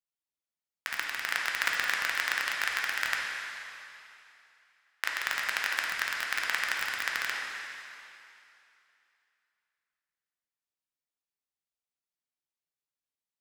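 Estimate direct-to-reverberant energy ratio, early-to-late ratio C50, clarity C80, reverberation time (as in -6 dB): -2.0 dB, -0.5 dB, 1.5 dB, 2.8 s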